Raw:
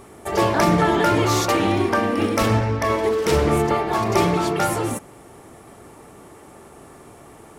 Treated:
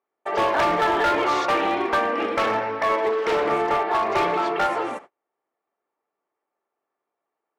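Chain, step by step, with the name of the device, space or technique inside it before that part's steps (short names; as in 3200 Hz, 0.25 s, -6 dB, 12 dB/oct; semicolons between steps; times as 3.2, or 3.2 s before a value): walkie-talkie (BPF 530–2500 Hz; hard clip -18.5 dBFS, distortion -14 dB; gate -41 dBFS, range -37 dB); gain +2.5 dB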